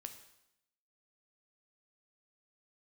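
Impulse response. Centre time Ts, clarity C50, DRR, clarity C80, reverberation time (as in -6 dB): 13 ms, 10.0 dB, 6.5 dB, 12.0 dB, 0.80 s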